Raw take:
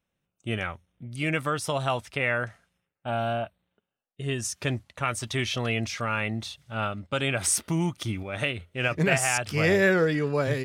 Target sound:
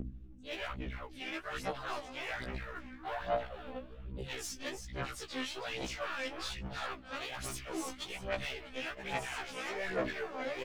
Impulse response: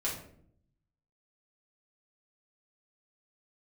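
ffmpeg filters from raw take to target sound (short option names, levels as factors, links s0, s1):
-filter_complex "[0:a]highpass=210,lowpass=4800,aeval=exprs='(tanh(5.62*val(0)+0.4)-tanh(0.4))/5.62':c=same,aeval=exprs='val(0)+0.00708*(sin(2*PI*50*n/s)+sin(2*PI*2*50*n/s)/2+sin(2*PI*3*50*n/s)/3+sin(2*PI*4*50*n/s)/4+sin(2*PI*5*50*n/s)/5)':c=same,areverse,acompressor=threshold=0.0112:ratio=6,areverse,asplit=4[s0][s1][s2][s3];[s1]asetrate=35002,aresample=44100,atempo=1.25992,volume=0.158[s4];[s2]asetrate=55563,aresample=44100,atempo=0.793701,volume=0.631[s5];[s3]asetrate=58866,aresample=44100,atempo=0.749154,volume=0.141[s6];[s0][s4][s5][s6]amix=inputs=4:normalize=0,asplit=2[s7][s8];[s8]asplit=4[s9][s10][s11][s12];[s9]adelay=324,afreqshift=-140,volume=0.376[s13];[s10]adelay=648,afreqshift=-280,volume=0.116[s14];[s11]adelay=972,afreqshift=-420,volume=0.0363[s15];[s12]adelay=1296,afreqshift=-560,volume=0.0112[s16];[s13][s14][s15][s16]amix=inputs=4:normalize=0[s17];[s7][s17]amix=inputs=2:normalize=0,aeval=exprs='0.0631*(cos(1*acos(clip(val(0)/0.0631,-1,1)))-cos(1*PI/2))+0.01*(cos(2*acos(clip(val(0)/0.0631,-1,1)))-cos(2*PI/2))+0.0126*(cos(3*acos(clip(val(0)/0.0631,-1,1)))-cos(3*PI/2))+0.00562*(cos(6*acos(clip(val(0)/0.0631,-1,1)))-cos(6*PI/2))+0.00316*(cos(8*acos(clip(val(0)/0.0631,-1,1)))-cos(8*PI/2))':c=same,acrossover=split=320[s18][s19];[s18]acompressor=threshold=0.00126:ratio=5[s20];[s20][s19]amix=inputs=2:normalize=0,alimiter=level_in=3.98:limit=0.0631:level=0:latency=1:release=128,volume=0.251,aphaser=in_gain=1:out_gain=1:delay=3.9:decay=0.78:speed=1.2:type=sinusoidal,afftfilt=real='re*1.73*eq(mod(b,3),0)':imag='im*1.73*eq(mod(b,3),0)':win_size=2048:overlap=0.75,volume=2.51"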